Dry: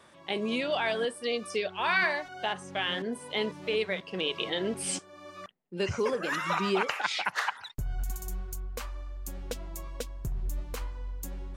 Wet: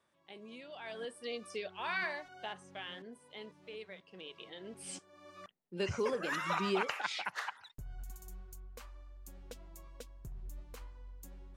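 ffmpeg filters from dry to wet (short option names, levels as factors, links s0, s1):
-af "volume=1.41,afade=t=in:st=0.76:d=0.42:silence=0.316228,afade=t=out:st=2.27:d=0.93:silence=0.398107,afade=t=in:st=4.62:d=1.19:silence=0.223872,afade=t=out:st=6.74:d=1:silence=0.398107"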